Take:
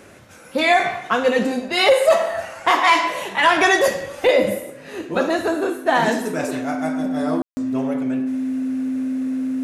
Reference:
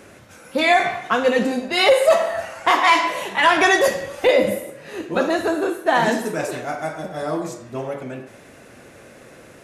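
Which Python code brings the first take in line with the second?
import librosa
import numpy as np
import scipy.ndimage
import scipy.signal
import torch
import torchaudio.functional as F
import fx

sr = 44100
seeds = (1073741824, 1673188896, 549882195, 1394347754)

y = fx.notch(x, sr, hz=260.0, q=30.0)
y = fx.fix_ambience(y, sr, seeds[0], print_start_s=0.0, print_end_s=0.5, start_s=7.42, end_s=7.57)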